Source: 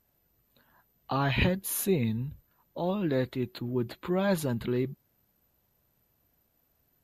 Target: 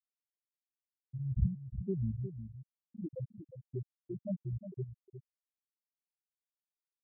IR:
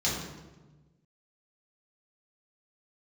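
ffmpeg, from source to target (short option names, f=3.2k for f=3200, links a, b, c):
-filter_complex "[0:a]aeval=exprs='val(0)+0.00891*(sin(2*PI*60*n/s)+sin(2*PI*2*60*n/s)/2+sin(2*PI*3*60*n/s)/3+sin(2*PI*4*60*n/s)/4+sin(2*PI*5*60*n/s)/5)':c=same,acrossover=split=120[a][b];[b]acompressor=threshold=-49dB:ratio=1.5[c];[a][c]amix=inputs=2:normalize=0,afftfilt=real='re*gte(hypot(re,im),0.178)':imag='im*gte(hypot(re,im),0.178)':win_size=1024:overlap=0.75,asplit=2[d][e];[e]aecho=0:1:358:0.299[f];[d][f]amix=inputs=2:normalize=0,volume=1.5dB"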